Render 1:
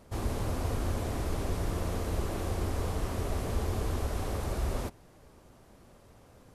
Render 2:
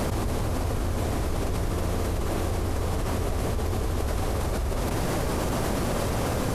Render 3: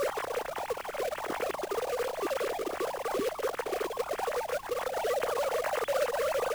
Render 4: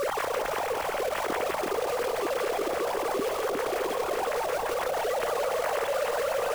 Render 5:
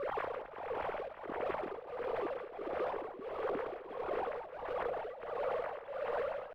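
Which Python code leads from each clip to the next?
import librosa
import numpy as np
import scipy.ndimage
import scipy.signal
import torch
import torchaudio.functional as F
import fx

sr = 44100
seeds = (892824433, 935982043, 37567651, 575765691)

y1 = fx.env_flatten(x, sr, amount_pct=100)
y2 = fx.sine_speech(y1, sr)
y2 = fx.quant_companded(y2, sr, bits=4)
y2 = fx.dmg_noise_colour(y2, sr, seeds[0], colour='pink', level_db=-48.0)
y2 = y2 * 10.0 ** (-6.5 / 20.0)
y3 = fx.echo_split(y2, sr, split_hz=800.0, low_ms=358, high_ms=171, feedback_pct=52, wet_db=-6)
y3 = fx.env_flatten(y3, sr, amount_pct=70)
y3 = y3 * 10.0 ** (-2.0 / 20.0)
y4 = fx.tremolo_shape(y3, sr, shape='triangle', hz=1.5, depth_pct=85)
y4 = fx.air_absorb(y4, sr, metres=480.0)
y4 = fx.record_warp(y4, sr, rpm=33.33, depth_cents=100.0)
y4 = y4 * 10.0 ** (-4.5 / 20.0)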